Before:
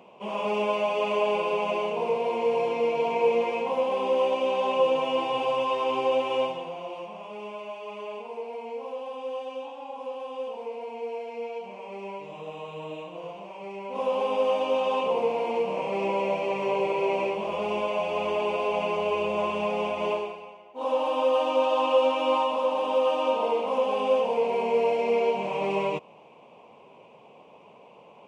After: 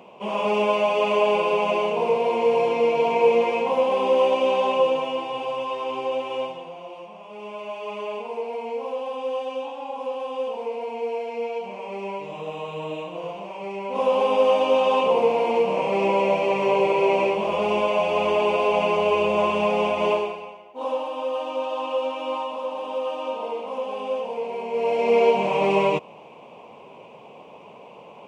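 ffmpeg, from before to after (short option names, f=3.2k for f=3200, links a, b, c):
-af "volume=24dB,afade=t=out:st=4.53:d=0.69:silence=0.446684,afade=t=in:st=7.26:d=0.61:silence=0.398107,afade=t=out:st=20.44:d=0.65:silence=0.316228,afade=t=in:st=24.71:d=0.52:silence=0.281838"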